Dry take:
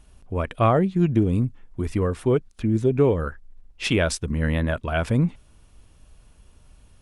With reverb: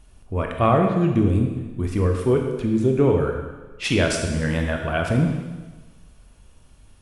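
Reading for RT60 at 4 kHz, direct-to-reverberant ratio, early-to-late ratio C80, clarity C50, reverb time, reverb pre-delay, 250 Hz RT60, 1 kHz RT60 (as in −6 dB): 1.3 s, 2.0 dB, 6.0 dB, 4.0 dB, 1.3 s, 18 ms, 1.2 s, 1.3 s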